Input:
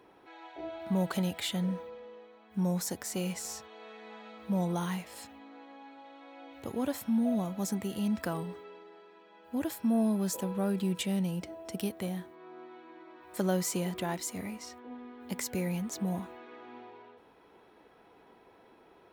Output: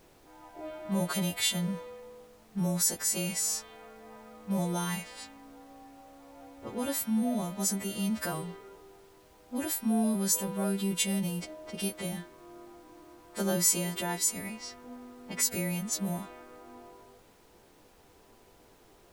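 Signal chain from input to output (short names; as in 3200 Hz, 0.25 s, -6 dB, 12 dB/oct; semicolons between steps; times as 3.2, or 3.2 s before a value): frequency quantiser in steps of 2 st; low-pass opened by the level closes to 610 Hz, open at -30.5 dBFS; added noise pink -62 dBFS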